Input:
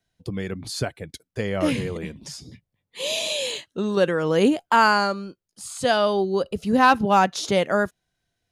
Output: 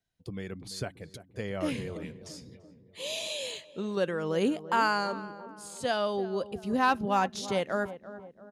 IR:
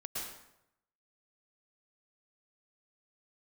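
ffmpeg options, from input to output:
-filter_complex "[0:a]asplit=2[s0][s1];[s1]adelay=339,lowpass=f=1100:p=1,volume=0.224,asplit=2[s2][s3];[s3]adelay=339,lowpass=f=1100:p=1,volume=0.54,asplit=2[s4][s5];[s5]adelay=339,lowpass=f=1100:p=1,volume=0.54,asplit=2[s6][s7];[s7]adelay=339,lowpass=f=1100:p=1,volume=0.54,asplit=2[s8][s9];[s9]adelay=339,lowpass=f=1100:p=1,volume=0.54,asplit=2[s10][s11];[s11]adelay=339,lowpass=f=1100:p=1,volume=0.54[s12];[s0][s2][s4][s6][s8][s10][s12]amix=inputs=7:normalize=0,volume=0.355"

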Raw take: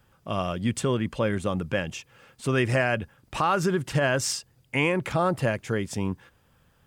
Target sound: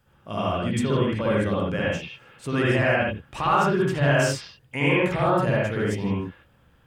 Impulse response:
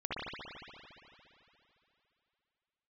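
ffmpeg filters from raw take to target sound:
-filter_complex "[0:a]asettb=1/sr,asplit=3[s0][s1][s2];[s0]atrim=end=0.984[s3];[s1]atrim=start=0.98:end=1.6,asetpts=PTS-STARTPTS,afade=t=in:d=0.004:c=qsin,afade=t=out:st=0.616:d=0.004:c=qsin,bandreject=f=6800:w=12[s4];[s2]atrim=start=1.596[s5];[s3][s4]acrossfade=d=0.004:c1=hsin:c2=qsin[s6];[s6][s5]acrossfade=d=0.004:c1=qsin:c2=hsin[s7];[1:a]atrim=start_sample=2205,afade=t=out:st=0.22:d=0.01,atrim=end_sample=10143[s8];[s7][s8]afir=irnorm=-1:irlink=0"

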